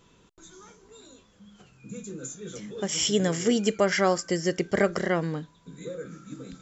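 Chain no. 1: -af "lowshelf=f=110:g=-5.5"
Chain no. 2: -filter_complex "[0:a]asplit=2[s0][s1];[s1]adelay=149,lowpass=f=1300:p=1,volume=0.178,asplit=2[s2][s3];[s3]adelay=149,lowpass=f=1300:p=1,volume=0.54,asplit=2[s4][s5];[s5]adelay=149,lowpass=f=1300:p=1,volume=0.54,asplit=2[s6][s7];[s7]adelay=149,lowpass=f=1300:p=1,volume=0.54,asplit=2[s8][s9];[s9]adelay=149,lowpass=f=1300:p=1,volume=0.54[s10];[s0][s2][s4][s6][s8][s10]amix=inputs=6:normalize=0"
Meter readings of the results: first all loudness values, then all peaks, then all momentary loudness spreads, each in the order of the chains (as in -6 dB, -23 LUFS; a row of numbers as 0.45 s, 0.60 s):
-27.0 LUFS, -26.5 LUFS; -10.0 dBFS, -10.0 dBFS; 18 LU, 18 LU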